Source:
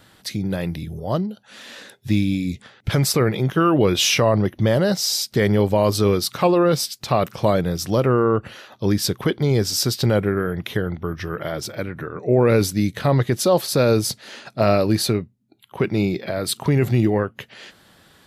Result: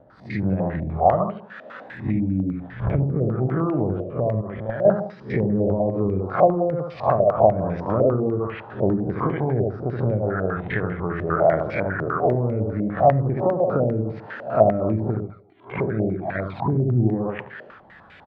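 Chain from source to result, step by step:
peak hold with a rise ahead of every peak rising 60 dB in 0.34 s
camcorder AGC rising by 5.8 dB per second
repeating echo 73 ms, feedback 37%, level −4 dB
0:04.41–0:04.85: output level in coarse steps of 13 dB
phase shifter 0.35 Hz, delay 1.9 ms, feedback 23%
treble cut that deepens with the level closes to 310 Hz, closed at −10.5 dBFS
dynamic equaliser 700 Hz, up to +6 dB, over −38 dBFS, Q 2.8
0:15.14–0:16.91: flanger swept by the level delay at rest 3.6 ms, full sweep at −12 dBFS
on a send at −17 dB: spectral tilt +3 dB per octave + convolution reverb RT60 0.50 s, pre-delay 5 ms
on the sum: low-pass on a step sequencer 10 Hz 620–2,300 Hz
level −6 dB

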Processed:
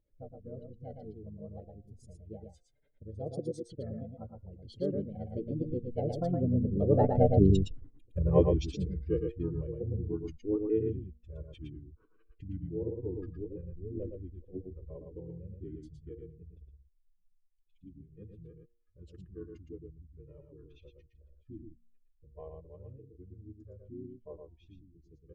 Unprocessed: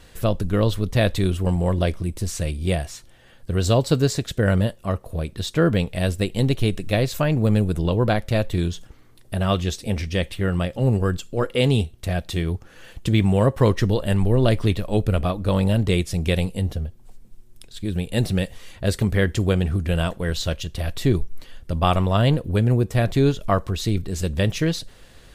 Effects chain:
expanding power law on the bin magnitudes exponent 2.3
source passing by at 0:07.72, 47 m/s, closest 9 metres
on a send: single-tap delay 114 ms −5 dB
on the sum: gain on a spectral selection 0:18.85–0:19.12, 390–1,300 Hz −12 dB
hum removal 234.2 Hz, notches 6
pitch-shifted copies added −5 semitones −3 dB
hollow resonant body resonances 320/460 Hz, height 13 dB, ringing for 20 ms

